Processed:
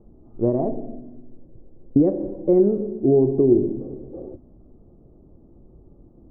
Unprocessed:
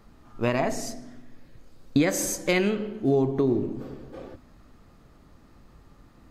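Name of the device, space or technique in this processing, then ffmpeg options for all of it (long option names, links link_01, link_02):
under water: -af "lowpass=frequency=640:width=0.5412,lowpass=frequency=640:width=1.3066,equalizer=frequency=360:width_type=o:width=0.31:gain=7.5,volume=3.5dB"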